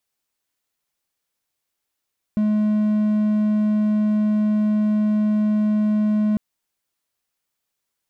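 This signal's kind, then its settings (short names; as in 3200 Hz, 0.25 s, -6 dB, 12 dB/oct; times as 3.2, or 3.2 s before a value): tone triangle 212 Hz -14 dBFS 4.00 s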